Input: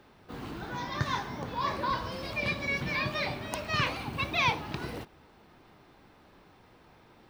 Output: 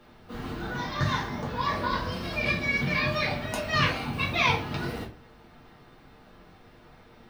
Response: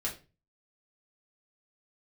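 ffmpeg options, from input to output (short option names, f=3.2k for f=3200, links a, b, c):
-filter_complex "[1:a]atrim=start_sample=2205[a];[0:a][a]afir=irnorm=-1:irlink=0,volume=1dB"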